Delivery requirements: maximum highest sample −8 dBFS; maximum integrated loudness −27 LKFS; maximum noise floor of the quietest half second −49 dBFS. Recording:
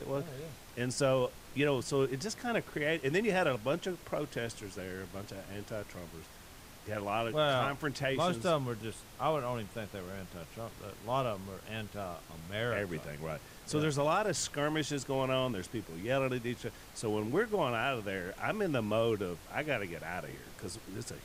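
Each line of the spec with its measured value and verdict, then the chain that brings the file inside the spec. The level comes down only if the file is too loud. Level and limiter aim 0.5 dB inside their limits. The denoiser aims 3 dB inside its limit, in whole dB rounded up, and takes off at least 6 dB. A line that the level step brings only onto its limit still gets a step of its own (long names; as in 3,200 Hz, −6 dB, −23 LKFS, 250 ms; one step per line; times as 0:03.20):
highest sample −18.5 dBFS: in spec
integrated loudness −34.5 LKFS: in spec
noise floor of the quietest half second −52 dBFS: in spec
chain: no processing needed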